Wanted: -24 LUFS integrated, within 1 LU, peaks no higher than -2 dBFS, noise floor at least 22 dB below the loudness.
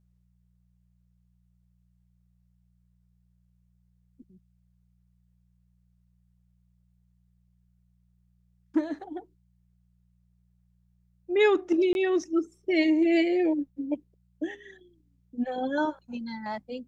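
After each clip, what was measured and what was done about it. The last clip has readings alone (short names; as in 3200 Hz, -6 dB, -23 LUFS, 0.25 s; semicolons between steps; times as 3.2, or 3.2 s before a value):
dropouts 1; longest dropout 21 ms; hum 60 Hz; harmonics up to 180 Hz; hum level -63 dBFS; loudness -27.5 LUFS; peak -11.5 dBFS; loudness target -24.0 LUFS
-> interpolate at 11.93, 21 ms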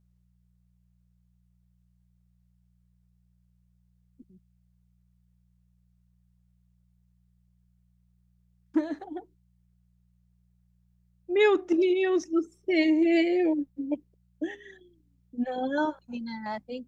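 dropouts 0; hum 60 Hz; harmonics up to 180 Hz; hum level -63 dBFS
-> de-hum 60 Hz, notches 3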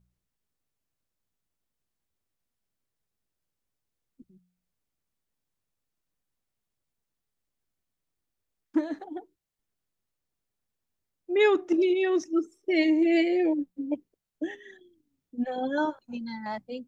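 hum none; loudness -27.0 LUFS; peak -11.5 dBFS; loudness target -24.0 LUFS
-> gain +3 dB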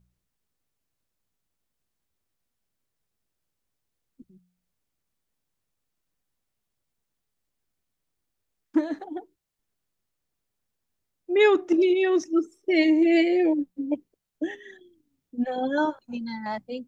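loudness -24.0 LUFS; peak -8.5 dBFS; noise floor -82 dBFS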